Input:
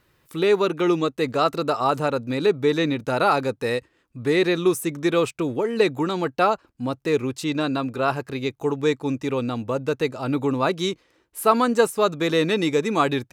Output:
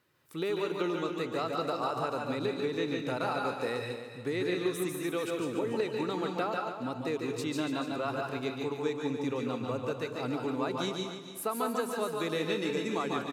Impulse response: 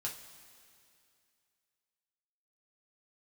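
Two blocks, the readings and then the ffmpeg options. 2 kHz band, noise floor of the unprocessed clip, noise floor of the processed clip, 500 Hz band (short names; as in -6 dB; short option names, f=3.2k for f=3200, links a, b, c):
-9.5 dB, -65 dBFS, -44 dBFS, -10.5 dB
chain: -filter_complex "[0:a]highpass=130,acompressor=threshold=-21dB:ratio=6,aecho=1:1:288:0.299,asplit=2[a][b];[1:a]atrim=start_sample=2205,adelay=143[c];[b][c]afir=irnorm=-1:irlink=0,volume=-1.5dB[d];[a][d]amix=inputs=2:normalize=0,volume=-8.5dB"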